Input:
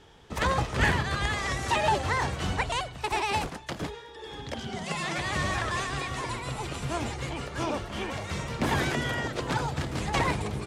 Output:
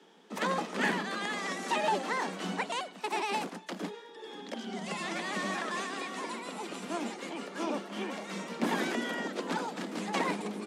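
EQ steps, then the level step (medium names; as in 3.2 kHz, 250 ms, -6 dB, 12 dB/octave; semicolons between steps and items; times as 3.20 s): steep high-pass 180 Hz 96 dB/octave; bass shelf 270 Hz +8.5 dB; -5.0 dB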